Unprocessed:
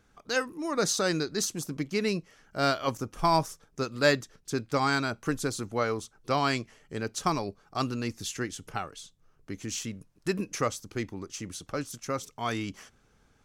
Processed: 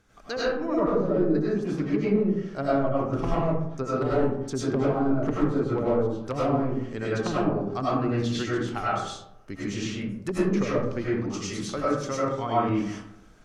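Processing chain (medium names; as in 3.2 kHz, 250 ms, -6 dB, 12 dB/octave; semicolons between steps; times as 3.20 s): integer overflow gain 17 dB; low-pass that closes with the level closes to 470 Hz, closed at -24.5 dBFS; algorithmic reverb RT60 0.78 s, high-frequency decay 0.45×, pre-delay 60 ms, DRR -8 dB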